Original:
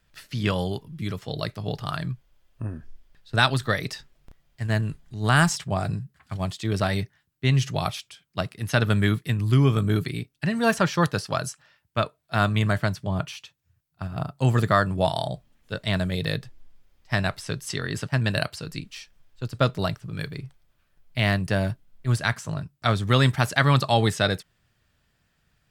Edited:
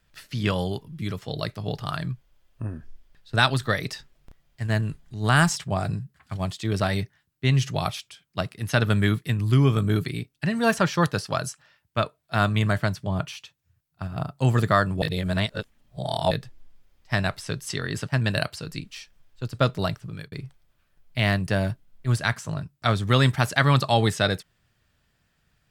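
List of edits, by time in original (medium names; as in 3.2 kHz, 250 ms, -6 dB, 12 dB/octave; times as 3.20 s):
15.02–16.31 s: reverse
20.07–20.32 s: fade out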